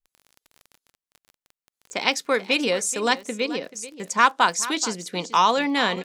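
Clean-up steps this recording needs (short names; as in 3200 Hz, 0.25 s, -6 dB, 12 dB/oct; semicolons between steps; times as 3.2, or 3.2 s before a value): de-click; inverse comb 0.433 s -15.5 dB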